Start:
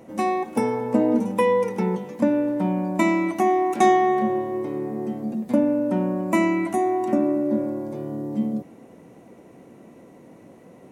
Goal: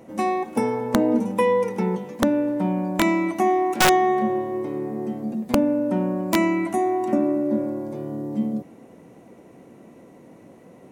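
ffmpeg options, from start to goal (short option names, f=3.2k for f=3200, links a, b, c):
-af "aeval=exprs='(mod(2.66*val(0)+1,2)-1)/2.66':c=same"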